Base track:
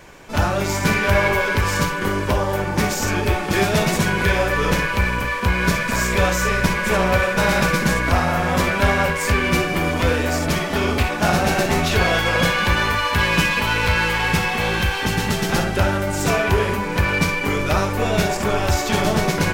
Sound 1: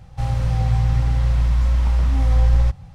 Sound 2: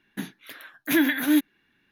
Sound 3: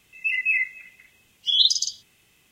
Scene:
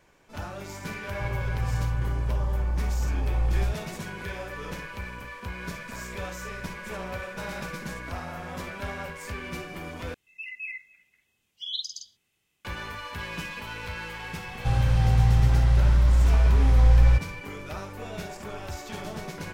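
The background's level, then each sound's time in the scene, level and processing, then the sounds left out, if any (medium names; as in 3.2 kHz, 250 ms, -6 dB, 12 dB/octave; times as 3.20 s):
base track -17.5 dB
1.02 s: add 1 -9.5 dB + brick-wall FIR low-pass 1.3 kHz
10.14 s: replace with 3 -14.5 dB
14.47 s: add 1 -1.5 dB
not used: 2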